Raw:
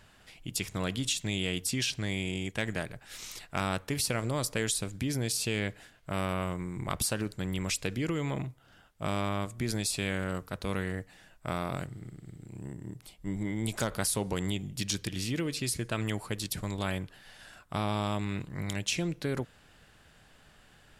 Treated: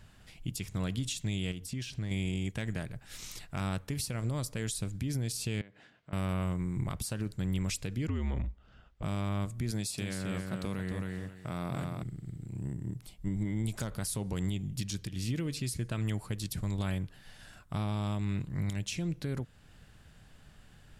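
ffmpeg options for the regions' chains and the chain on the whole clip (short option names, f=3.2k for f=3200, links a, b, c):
-filter_complex "[0:a]asettb=1/sr,asplit=3[a][b][c];[a]atrim=end=1.514[d];[b]atrim=start=1.51:end=2.11,asetpts=PTS-STARTPTS,afade=t=in:d=0.004:c=qsin,afade=t=out:st=0.596:d=0.004:c=qsin,highshelf=f=3.1k:g=-5,acompressor=threshold=-36dB:ratio=5:attack=3.2:release=140:knee=1:detection=peak,asoftclip=type=hard:threshold=-31.5dB[e];[c]atrim=start=2.106[f];[d][e]acrossfade=d=0.004:c1=hsin:c2=qsin[g];[g][f]acrossfade=d=0.004:c1=qsin:c2=hsin,asettb=1/sr,asplit=3[h][i][j];[h]atrim=end=5.614[k];[i]atrim=start=5.61:end=6.13,asetpts=PTS-STARTPTS,afade=t=in:d=0.004:c=qsin,afade=t=out:st=0.516:d=0.004:c=qsin,acompressor=threshold=-43dB:ratio=8:attack=3.2:release=140:knee=1:detection=peak,highpass=210,lowpass=3.6k[l];[j]atrim=start=6.126[m];[k][l]acrossfade=d=0.004:c1=hsin:c2=qsin[n];[n][m]acrossfade=d=0.004:c1=qsin:c2=hsin,asettb=1/sr,asplit=3[o][p][q];[o]atrim=end=8.074[r];[p]atrim=start=8.07:end=9.03,asetpts=PTS-STARTPTS,afade=t=in:d=0.004:c=qsin,afade=t=out:st=0.956:d=0.004:c=qsin,lowpass=4.2k,afreqshift=-71[s];[q]atrim=start=9.026[t];[r][s]acrossfade=d=0.004:c1=hsin:c2=qsin[u];[u][t]acrossfade=d=0.004:c1=qsin:c2=hsin,asettb=1/sr,asplit=3[v][w][x];[v]atrim=end=9.714[y];[w]atrim=start=9.71:end=12.03,asetpts=PTS-STARTPTS,afade=t=in:d=0.004:c=qsin,afade=t=out:st=2.316:d=0.004:c=qsin,highpass=110,aecho=1:1:267|534|801:0.531|0.111|0.0234,atrim=end_sample=102312[z];[x]atrim=start=12.026[aa];[y][z]acrossfade=d=0.004:c1=hsin:c2=qsin[ab];[ab][aa]acrossfade=d=0.004:c1=qsin:c2=hsin,bass=f=250:g=10,treble=f=4k:g=2,alimiter=limit=-21dB:level=0:latency=1:release=328,volume=-3.5dB"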